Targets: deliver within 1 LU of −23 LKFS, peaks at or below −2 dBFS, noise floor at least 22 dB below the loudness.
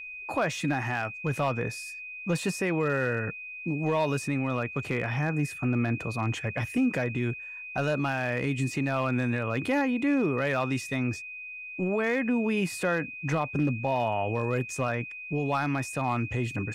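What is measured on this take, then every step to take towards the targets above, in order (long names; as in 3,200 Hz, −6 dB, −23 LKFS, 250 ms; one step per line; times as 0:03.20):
share of clipped samples 0.3%; peaks flattened at −18.5 dBFS; interfering tone 2,500 Hz; level of the tone −38 dBFS; integrated loudness −29.0 LKFS; sample peak −18.5 dBFS; target loudness −23.0 LKFS
→ clipped peaks rebuilt −18.5 dBFS
notch filter 2,500 Hz, Q 30
level +6 dB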